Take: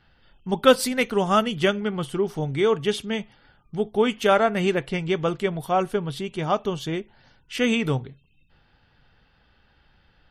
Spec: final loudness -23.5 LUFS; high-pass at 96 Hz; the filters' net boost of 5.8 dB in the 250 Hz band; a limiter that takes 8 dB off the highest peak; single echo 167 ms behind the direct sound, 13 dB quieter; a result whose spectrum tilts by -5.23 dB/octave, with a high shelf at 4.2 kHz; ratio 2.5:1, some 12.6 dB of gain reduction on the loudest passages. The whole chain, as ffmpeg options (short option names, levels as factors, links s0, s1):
-af "highpass=96,equalizer=f=250:t=o:g=7.5,highshelf=f=4200:g=8,acompressor=threshold=0.0501:ratio=2.5,alimiter=limit=0.1:level=0:latency=1,aecho=1:1:167:0.224,volume=2.11"